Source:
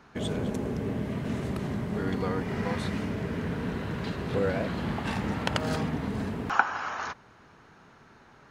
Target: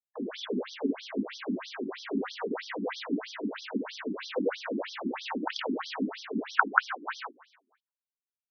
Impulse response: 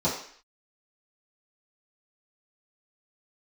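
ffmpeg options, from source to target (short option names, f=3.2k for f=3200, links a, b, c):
-filter_complex "[0:a]asplit=2[a][b];[b]aecho=0:1:29.15|139.9|183.7:0.501|0.355|1[c];[a][c]amix=inputs=2:normalize=0,acrusher=bits=5:mix=0:aa=0.000001,lowpass=6.7k,asplit=2[d][e];[e]adelay=246,lowpass=f=2.3k:p=1,volume=-17dB,asplit=2[f][g];[g]adelay=246,lowpass=f=2.3k:p=1,volume=0.2[h];[d][f][h]amix=inputs=3:normalize=0,asplit=2[i][j];[1:a]atrim=start_sample=2205,asetrate=74970,aresample=44100[k];[j][k]afir=irnorm=-1:irlink=0,volume=-23dB[l];[i][l]amix=inputs=2:normalize=0,afftfilt=real='re*between(b*sr/1024,260*pow(4500/260,0.5+0.5*sin(2*PI*3.1*pts/sr))/1.41,260*pow(4500/260,0.5+0.5*sin(2*PI*3.1*pts/sr))*1.41)':imag='im*between(b*sr/1024,260*pow(4500/260,0.5+0.5*sin(2*PI*3.1*pts/sr))/1.41,260*pow(4500/260,0.5+0.5*sin(2*PI*3.1*pts/sr))*1.41)':win_size=1024:overlap=0.75,volume=1.5dB"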